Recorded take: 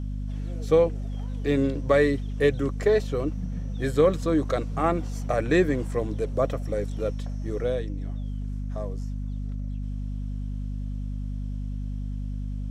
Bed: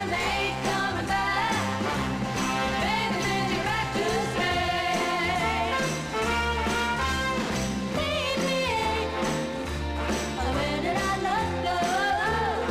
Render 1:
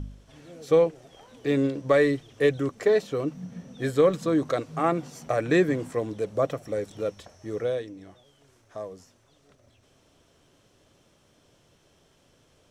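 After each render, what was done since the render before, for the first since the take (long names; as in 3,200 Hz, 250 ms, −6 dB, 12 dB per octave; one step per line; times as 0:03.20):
hum removal 50 Hz, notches 5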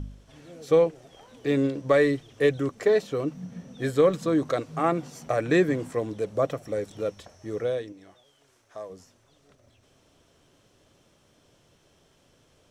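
0:07.92–0:08.90: low-shelf EQ 320 Hz −10 dB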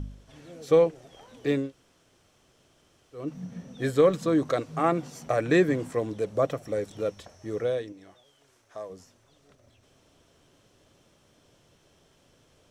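0:01.61–0:03.24: fill with room tone, crossfade 0.24 s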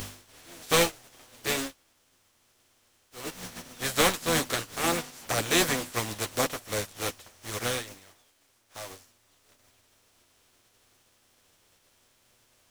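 compressing power law on the bin magnitudes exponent 0.34
multi-voice chorus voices 4, 0.72 Hz, delay 10 ms, depth 2.1 ms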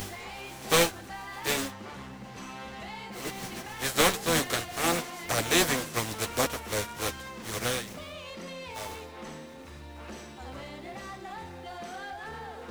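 mix in bed −15 dB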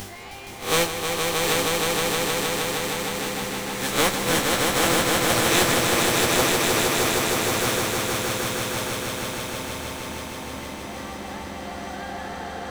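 peak hold with a rise ahead of every peak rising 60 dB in 0.36 s
echo that builds up and dies away 156 ms, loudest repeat 5, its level −4 dB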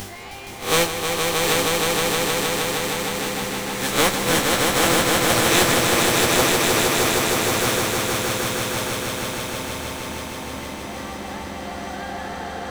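level +2.5 dB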